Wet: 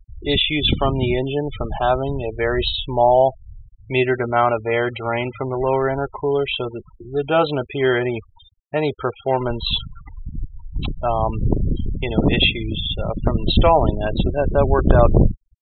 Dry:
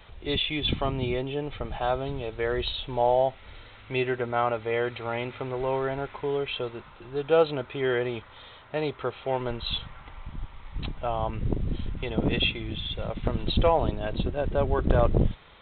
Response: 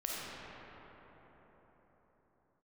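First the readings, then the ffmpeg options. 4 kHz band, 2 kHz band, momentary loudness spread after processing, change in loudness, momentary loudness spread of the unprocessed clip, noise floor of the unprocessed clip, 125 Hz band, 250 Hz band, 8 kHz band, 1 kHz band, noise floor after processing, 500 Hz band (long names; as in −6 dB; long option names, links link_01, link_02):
+8.5 dB, +8.5 dB, 11 LU, +8.5 dB, 14 LU, −50 dBFS, +9.0 dB, +9.0 dB, can't be measured, +9.0 dB, −52 dBFS, +7.5 dB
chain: -af "afftfilt=real='re*gte(hypot(re,im),0.02)':imag='im*gte(hypot(re,im),0.02)':win_size=1024:overlap=0.75,bandreject=frequency=490:width=12,volume=9dB"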